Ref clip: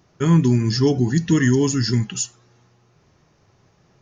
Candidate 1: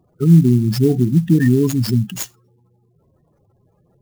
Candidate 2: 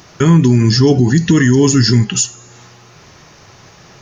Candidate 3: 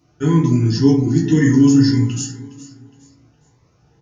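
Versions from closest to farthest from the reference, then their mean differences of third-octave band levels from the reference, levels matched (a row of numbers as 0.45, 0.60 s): 2, 3, 1; 2.0, 5.0, 9.0 dB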